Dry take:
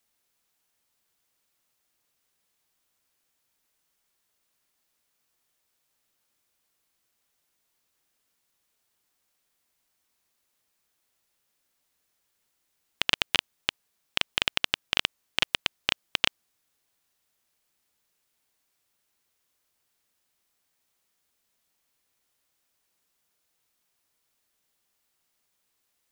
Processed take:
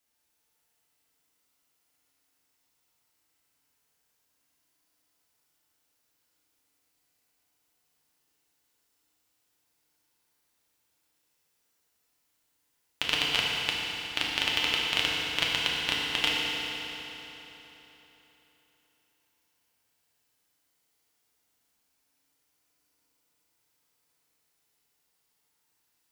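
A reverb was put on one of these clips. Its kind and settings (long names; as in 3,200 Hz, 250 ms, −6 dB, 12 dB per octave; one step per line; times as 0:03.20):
feedback delay network reverb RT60 3.8 s, high-frequency decay 0.85×, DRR −5 dB
level −5 dB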